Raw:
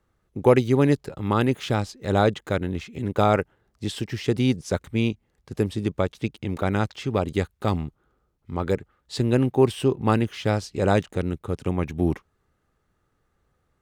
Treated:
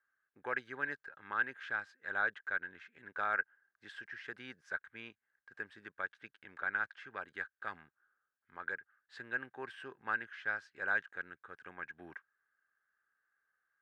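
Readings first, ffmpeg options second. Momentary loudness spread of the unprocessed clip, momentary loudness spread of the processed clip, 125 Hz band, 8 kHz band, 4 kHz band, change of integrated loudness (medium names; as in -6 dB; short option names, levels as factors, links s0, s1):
11 LU, 17 LU, -38.5 dB, under -25 dB, -21.0 dB, -15.0 dB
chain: -af "bandpass=f=1600:t=q:w=14:csg=0,volume=2.11"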